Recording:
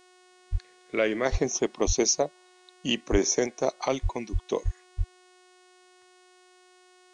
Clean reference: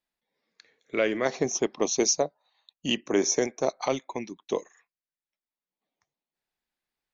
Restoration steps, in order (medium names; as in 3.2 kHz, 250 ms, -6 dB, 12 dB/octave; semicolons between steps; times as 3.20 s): de-hum 365.1 Hz, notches 27; de-plosive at 0.51/1.31/1.86/3.11/4.02/4.32/4.64/4.97 s